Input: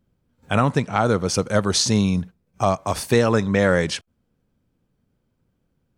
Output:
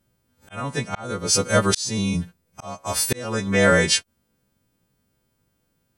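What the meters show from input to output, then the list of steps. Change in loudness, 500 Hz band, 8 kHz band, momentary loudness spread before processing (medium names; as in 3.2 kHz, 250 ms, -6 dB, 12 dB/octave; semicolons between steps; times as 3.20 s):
-1.0 dB, -3.0 dB, +3.5 dB, 7 LU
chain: partials quantised in pitch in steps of 2 st; slow attack 558 ms; trim +1.5 dB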